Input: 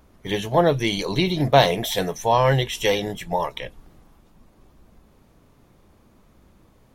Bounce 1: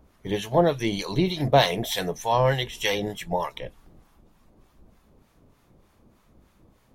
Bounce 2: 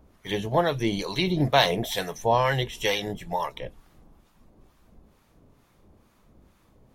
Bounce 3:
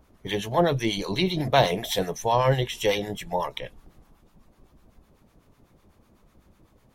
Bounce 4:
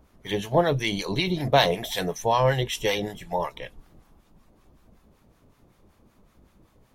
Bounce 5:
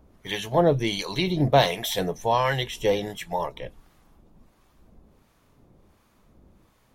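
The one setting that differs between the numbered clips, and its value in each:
harmonic tremolo, rate: 3.3 Hz, 2.2 Hz, 8 Hz, 5.3 Hz, 1.4 Hz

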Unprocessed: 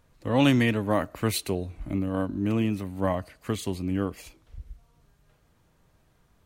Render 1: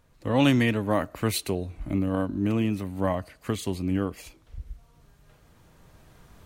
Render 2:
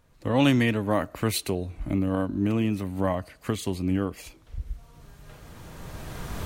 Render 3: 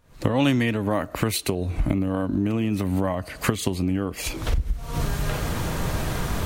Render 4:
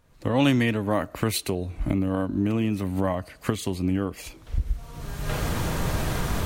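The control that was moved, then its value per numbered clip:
recorder AGC, rising by: 5.1 dB/s, 13 dB/s, 86 dB/s, 33 dB/s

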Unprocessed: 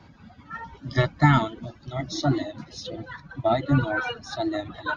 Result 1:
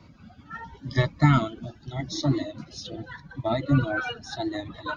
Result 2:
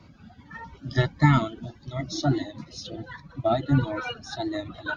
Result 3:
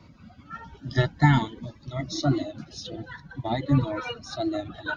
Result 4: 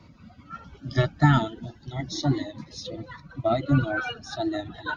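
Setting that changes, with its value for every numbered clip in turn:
Shepard-style phaser, rate: 0.82 Hz, 1.5 Hz, 0.49 Hz, 0.32 Hz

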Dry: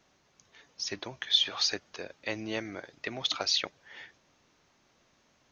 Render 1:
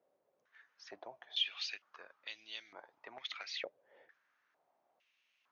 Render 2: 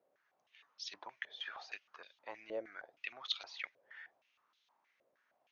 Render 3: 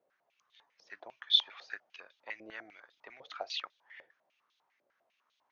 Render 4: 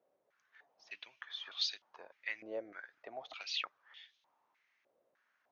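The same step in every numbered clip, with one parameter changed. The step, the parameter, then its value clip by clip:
step-sequenced band-pass, rate: 2.2 Hz, 6.4 Hz, 10 Hz, 3.3 Hz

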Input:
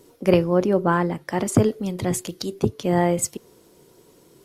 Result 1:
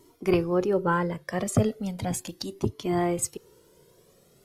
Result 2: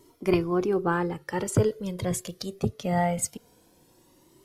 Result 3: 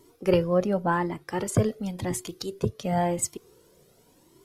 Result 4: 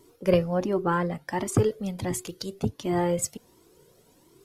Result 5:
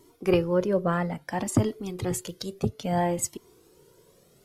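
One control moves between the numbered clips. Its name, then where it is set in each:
Shepard-style flanger, rate: 0.37 Hz, 0.22 Hz, 0.92 Hz, 1.4 Hz, 0.6 Hz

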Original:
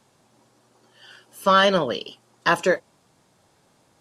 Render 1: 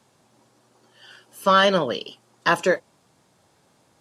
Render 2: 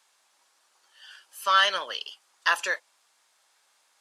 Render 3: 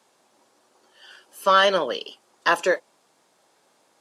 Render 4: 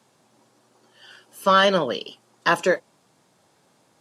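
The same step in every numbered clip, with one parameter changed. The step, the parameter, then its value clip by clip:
high-pass, cutoff frequency: 53 Hz, 1.3 kHz, 350 Hz, 130 Hz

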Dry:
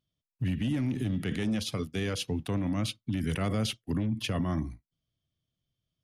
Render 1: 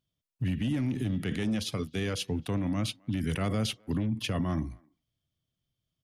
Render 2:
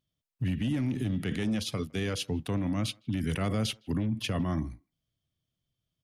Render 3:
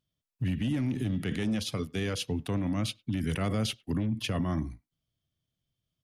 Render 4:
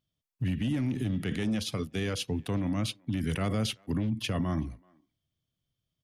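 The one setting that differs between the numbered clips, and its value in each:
speakerphone echo, time: 260 ms, 160 ms, 100 ms, 380 ms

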